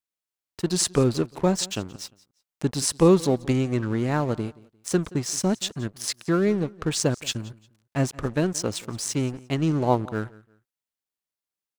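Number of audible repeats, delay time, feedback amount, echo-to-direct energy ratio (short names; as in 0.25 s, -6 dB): 2, 0.175 s, 28%, -21.5 dB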